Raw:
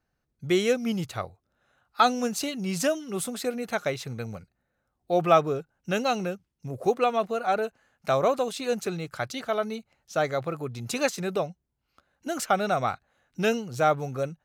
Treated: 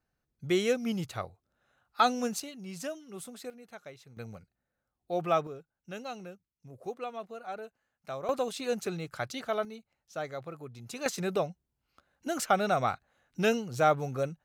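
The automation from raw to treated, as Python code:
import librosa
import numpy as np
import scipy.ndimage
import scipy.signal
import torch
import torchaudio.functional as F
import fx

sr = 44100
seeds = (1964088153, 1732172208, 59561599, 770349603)

y = fx.gain(x, sr, db=fx.steps((0.0, -4.0), (2.4, -12.5), (3.5, -19.0), (4.17, -8.0), (5.47, -14.5), (8.29, -4.0), (9.65, -11.0), (11.06, -2.0)))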